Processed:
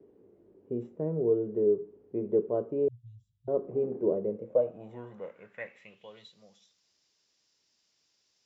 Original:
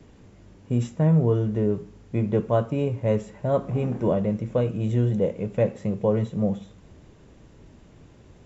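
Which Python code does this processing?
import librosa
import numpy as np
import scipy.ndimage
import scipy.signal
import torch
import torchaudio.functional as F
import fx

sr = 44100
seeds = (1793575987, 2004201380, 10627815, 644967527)

y = fx.filter_sweep_bandpass(x, sr, from_hz=400.0, to_hz=5100.0, start_s=4.27, end_s=6.46, q=4.8)
y = fx.cheby1_bandstop(y, sr, low_hz=130.0, high_hz=3300.0, order=5, at=(2.88, 3.48))
y = y * 10.0 ** (3.0 / 20.0)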